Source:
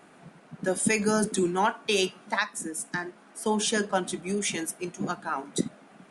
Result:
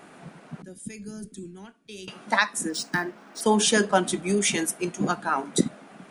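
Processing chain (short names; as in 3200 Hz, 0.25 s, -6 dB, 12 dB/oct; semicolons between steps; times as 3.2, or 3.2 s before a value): 0.62–2.08 passive tone stack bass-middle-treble 10-0-1; 2.69–3.41 decimation joined by straight lines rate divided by 3×; gain +5.5 dB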